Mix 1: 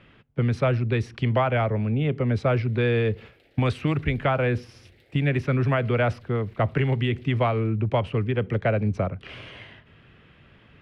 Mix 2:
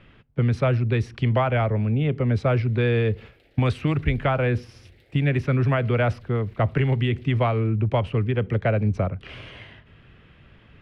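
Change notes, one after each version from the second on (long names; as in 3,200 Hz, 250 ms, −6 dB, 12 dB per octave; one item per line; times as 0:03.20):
master: add low-shelf EQ 65 Hz +10.5 dB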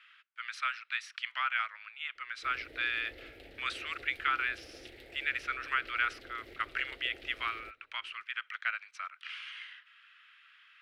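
speech: add elliptic high-pass filter 1,300 Hz, stop band 80 dB
background +7.0 dB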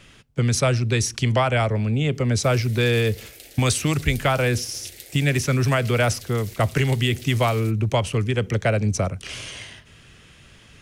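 speech: remove elliptic high-pass filter 1,300 Hz, stop band 80 dB
master: remove high-frequency loss of the air 450 metres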